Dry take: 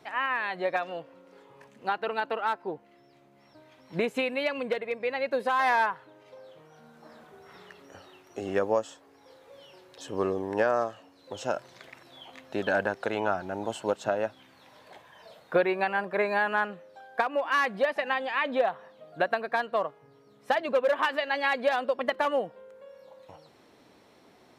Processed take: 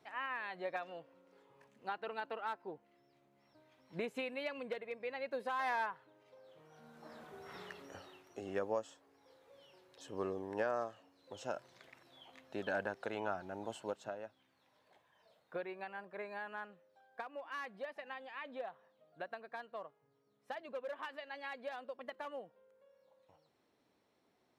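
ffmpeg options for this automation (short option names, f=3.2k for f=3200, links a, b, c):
-af "volume=0.5dB,afade=t=in:st=6.42:d=1.19:silence=0.237137,afade=t=out:st=7.61:d=0.81:silence=0.266073,afade=t=out:st=13.74:d=0.48:silence=0.421697"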